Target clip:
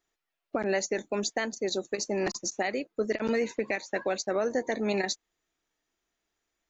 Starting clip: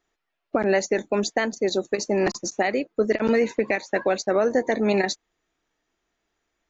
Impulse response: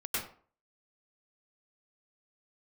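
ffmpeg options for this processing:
-af "highshelf=frequency=3900:gain=8,volume=-7.5dB"

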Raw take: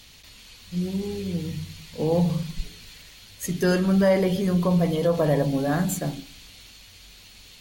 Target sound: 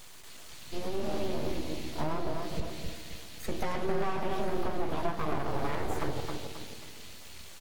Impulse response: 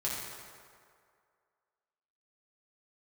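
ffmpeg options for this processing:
-filter_complex "[0:a]acrossover=split=2900[link_01][link_02];[link_02]acompressor=threshold=-46dB:ratio=4:attack=1:release=60[link_03];[link_01][link_03]amix=inputs=2:normalize=0,bandreject=frequency=60:width_type=h:width=6,bandreject=frequency=120:width_type=h:width=6,bandreject=frequency=180:width_type=h:width=6,acompressor=threshold=-28dB:ratio=12,asplit=2[link_04][link_05];[link_05]adelay=267,lowpass=frequency=2000:poles=1,volume=-4dB,asplit=2[link_06][link_07];[link_07]adelay=267,lowpass=frequency=2000:poles=1,volume=0.45,asplit=2[link_08][link_09];[link_09]adelay=267,lowpass=frequency=2000:poles=1,volume=0.45,asplit=2[link_10][link_11];[link_11]adelay=267,lowpass=frequency=2000:poles=1,volume=0.45,asplit=2[link_12][link_13];[link_13]adelay=267,lowpass=frequency=2000:poles=1,volume=0.45,asplit=2[link_14][link_15];[link_15]adelay=267,lowpass=frequency=2000:poles=1,volume=0.45[link_16];[link_04][link_06][link_08][link_10][link_12][link_14][link_16]amix=inputs=7:normalize=0,aeval=exprs='abs(val(0))':channel_layout=same,asplit=2[link_17][link_18];[link_18]adelay=13,volume=-11dB[link_19];[link_17][link_19]amix=inputs=2:normalize=0,asplit=2[link_20][link_21];[1:a]atrim=start_sample=2205[link_22];[link_21][link_22]afir=irnorm=-1:irlink=0,volume=-14.5dB[link_23];[link_20][link_23]amix=inputs=2:normalize=0"

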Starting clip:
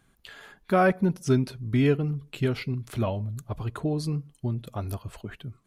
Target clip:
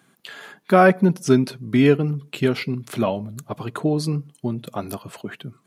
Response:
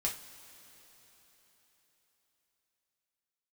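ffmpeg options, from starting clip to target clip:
-af "highpass=frequency=150:width=0.5412,highpass=frequency=150:width=1.3066,volume=7.5dB"

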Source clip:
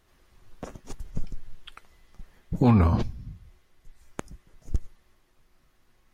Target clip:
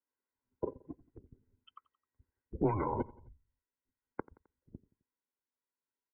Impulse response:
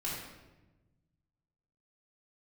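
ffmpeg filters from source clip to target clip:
-af "afftdn=noise_reduction=35:noise_floor=-36,aecho=1:1:1.9:0.61,alimiter=limit=-21.5dB:level=0:latency=1:release=136,aecho=1:1:87|174|261:0.0794|0.0397|0.0199,highpass=frequency=230:width_type=q:width=0.5412,highpass=frequency=230:width_type=q:width=1.307,lowpass=frequency=2300:width_type=q:width=0.5176,lowpass=frequency=2300:width_type=q:width=0.7071,lowpass=frequency=2300:width_type=q:width=1.932,afreqshift=-110,volume=4dB"

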